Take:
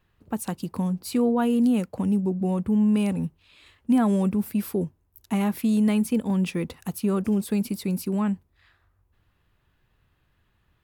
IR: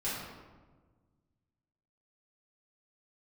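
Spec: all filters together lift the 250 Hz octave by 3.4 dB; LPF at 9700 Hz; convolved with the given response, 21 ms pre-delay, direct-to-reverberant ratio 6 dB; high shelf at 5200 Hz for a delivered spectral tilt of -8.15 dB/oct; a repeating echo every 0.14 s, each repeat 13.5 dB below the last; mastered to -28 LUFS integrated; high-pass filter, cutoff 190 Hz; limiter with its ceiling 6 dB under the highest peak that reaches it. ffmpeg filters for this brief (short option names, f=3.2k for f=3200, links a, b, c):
-filter_complex "[0:a]highpass=190,lowpass=9.7k,equalizer=f=250:t=o:g=6.5,highshelf=f=5.2k:g=7.5,alimiter=limit=-14dB:level=0:latency=1,aecho=1:1:140|280:0.211|0.0444,asplit=2[a][b];[1:a]atrim=start_sample=2205,adelay=21[c];[b][c]afir=irnorm=-1:irlink=0,volume=-11.5dB[d];[a][d]amix=inputs=2:normalize=0,volume=-6dB"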